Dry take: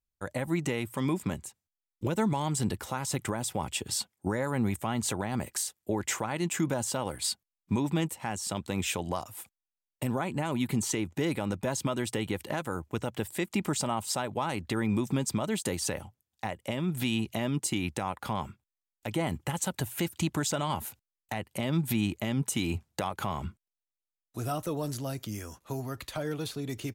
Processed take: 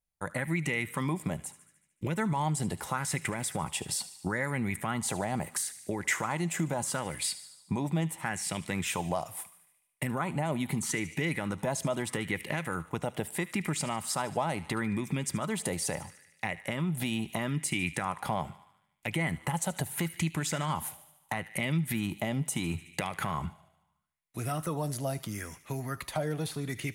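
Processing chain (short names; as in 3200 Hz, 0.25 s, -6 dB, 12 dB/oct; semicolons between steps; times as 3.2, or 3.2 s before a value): thirty-one-band EQ 160 Hz +9 dB, 2000 Hz +6 dB, 10000 Hz +9 dB; thin delay 74 ms, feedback 61%, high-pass 1600 Hz, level -16 dB; on a send at -22 dB: reverb RT60 0.90 s, pre-delay 3 ms; on the sum: compressor 2:1, threshold -29 dBFS, peak gain reduction 7 dB; LFO bell 0.76 Hz 650–2400 Hz +9 dB; gain -1.5 dB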